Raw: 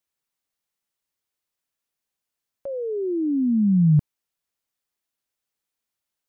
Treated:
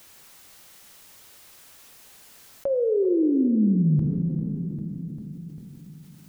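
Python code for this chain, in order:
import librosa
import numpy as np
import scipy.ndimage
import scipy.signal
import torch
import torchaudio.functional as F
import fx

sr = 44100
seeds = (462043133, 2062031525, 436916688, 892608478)

p1 = fx.rider(x, sr, range_db=3, speed_s=0.5)
p2 = p1 + fx.echo_feedback(p1, sr, ms=397, feedback_pct=45, wet_db=-17.0, dry=0)
p3 = fx.rev_plate(p2, sr, seeds[0], rt60_s=2.4, hf_ratio=1.0, predelay_ms=0, drr_db=6.0)
p4 = fx.env_flatten(p3, sr, amount_pct=50)
y = p4 * librosa.db_to_amplitude(-2.0)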